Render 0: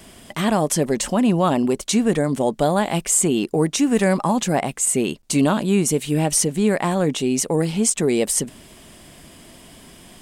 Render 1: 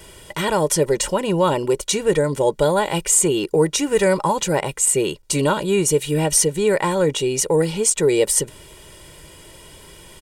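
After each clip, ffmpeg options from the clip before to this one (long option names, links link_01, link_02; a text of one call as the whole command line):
ffmpeg -i in.wav -af "aecho=1:1:2.1:0.81" out.wav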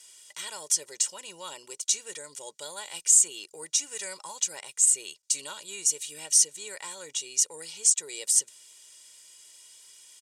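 ffmpeg -i in.wav -af "bandpass=frequency=6600:width_type=q:width=1.8:csg=0" out.wav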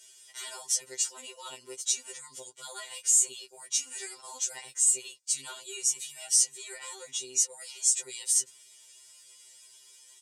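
ffmpeg -i in.wav -af "afftfilt=real='re*2.45*eq(mod(b,6),0)':imag='im*2.45*eq(mod(b,6),0)':win_size=2048:overlap=0.75" out.wav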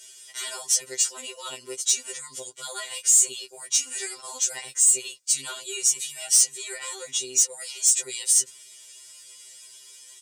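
ffmpeg -i in.wav -af "equalizer=frequency=880:width=7.5:gain=-7.5,asoftclip=type=tanh:threshold=-17.5dB,volume=7.5dB" out.wav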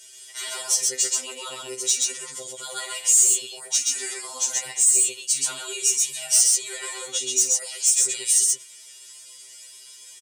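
ffmpeg -i in.wav -af "aecho=1:1:46.65|128.3:0.282|0.794" out.wav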